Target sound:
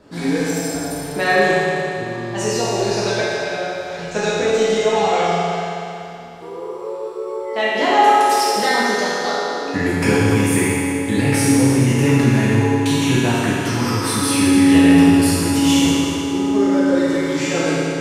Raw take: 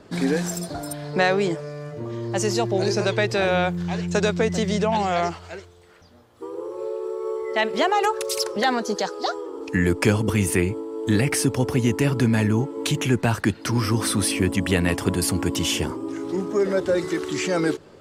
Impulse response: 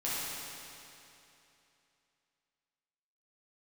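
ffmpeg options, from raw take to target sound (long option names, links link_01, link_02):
-filter_complex "[0:a]asettb=1/sr,asplit=3[link_01][link_02][link_03];[link_01]atrim=end=3.204[link_04];[link_02]atrim=start=3.2:end=3.99,asetpts=PTS-STARTPTS,afade=type=in:duration=0.004:curve=qsin,afade=type=out:start_time=0.786:duration=0.004:curve=qsin,acrossover=split=1300|4000[link_05][link_06][link_07];[link_05]acompressor=threshold=-32dB:ratio=4[link_08];[link_06]acompressor=threshold=-42dB:ratio=4[link_09];[link_07]acompressor=threshold=-46dB:ratio=4[link_10];[link_08][link_09][link_10]amix=inputs=3:normalize=0[link_11];[link_03]atrim=start=3.986[link_12];[link_04][link_11]acrossfade=duration=0.004:curve1=hsin:curve2=qsin[link_13];[link_13][link_12]acrossfade=duration=0.004:curve1=qsin:curve2=hsin[link_14];[1:a]atrim=start_sample=2205[link_15];[link_14][link_15]afir=irnorm=-1:irlink=0,volume=-1dB"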